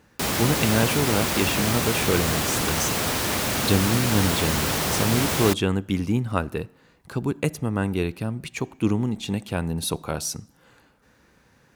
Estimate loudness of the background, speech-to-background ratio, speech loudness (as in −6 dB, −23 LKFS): −23.5 LKFS, −2.5 dB, −26.0 LKFS